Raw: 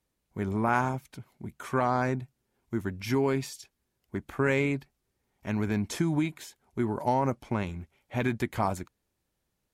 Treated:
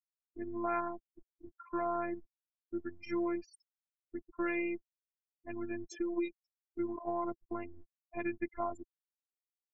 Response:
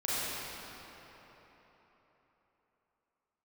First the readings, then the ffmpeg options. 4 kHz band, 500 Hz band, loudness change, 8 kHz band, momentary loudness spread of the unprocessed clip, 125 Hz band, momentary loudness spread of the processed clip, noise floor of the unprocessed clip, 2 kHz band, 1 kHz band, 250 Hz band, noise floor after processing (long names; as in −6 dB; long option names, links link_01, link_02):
below −15 dB, −7.5 dB, −8.5 dB, below −15 dB, 17 LU, −25.0 dB, 15 LU, −81 dBFS, −10.0 dB, −9.0 dB, −7.5 dB, below −85 dBFS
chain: -af "afftfilt=real='re*gte(hypot(re,im),0.0282)':imag='im*gte(hypot(re,im),0.0282)':win_size=1024:overlap=0.75,afftfilt=real='hypot(re,im)*cos(PI*b)':imag='0':win_size=512:overlap=0.75,volume=-4.5dB"